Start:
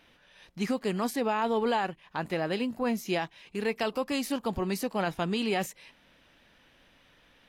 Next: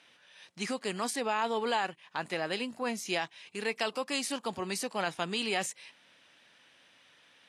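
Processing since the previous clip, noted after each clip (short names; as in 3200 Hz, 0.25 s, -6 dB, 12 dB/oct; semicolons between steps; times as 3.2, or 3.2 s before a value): elliptic band-pass 100–9300 Hz, stop band 50 dB; tilt +2.5 dB/oct; gain -1.5 dB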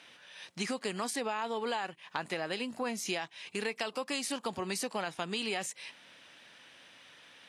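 compressor 4:1, threshold -38 dBFS, peak gain reduction 11 dB; gain +5.5 dB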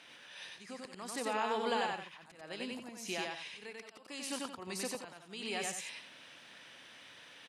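auto swell 0.53 s; loudspeakers at several distances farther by 32 m -2 dB, 60 m -11 dB; gain -1 dB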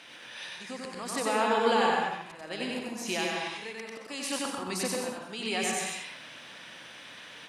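plate-style reverb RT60 0.56 s, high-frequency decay 0.45×, pre-delay 0.115 s, DRR 1.5 dB; gain +6.5 dB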